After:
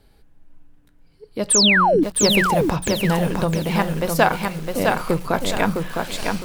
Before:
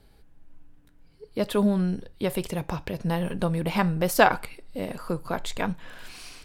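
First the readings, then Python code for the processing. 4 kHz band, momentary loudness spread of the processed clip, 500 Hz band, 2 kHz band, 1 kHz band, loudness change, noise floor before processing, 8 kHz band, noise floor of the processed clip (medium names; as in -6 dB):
+15.5 dB, 12 LU, +7.0 dB, +9.0 dB, +7.5 dB, +8.0 dB, -57 dBFS, +17.5 dB, -55 dBFS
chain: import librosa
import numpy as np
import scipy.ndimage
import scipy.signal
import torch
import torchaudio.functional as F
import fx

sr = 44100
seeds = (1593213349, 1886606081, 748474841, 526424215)

y = fx.rider(x, sr, range_db=4, speed_s=0.5)
y = fx.hum_notches(y, sr, base_hz=60, count=3)
y = fx.spec_paint(y, sr, seeds[0], shape='fall', start_s=1.5, length_s=0.54, low_hz=260.0, high_hz=10000.0, level_db=-20.0)
y = fx.echo_crushed(y, sr, ms=659, feedback_pct=35, bits=7, wet_db=-3.5)
y = F.gain(torch.from_numpy(y), 4.5).numpy()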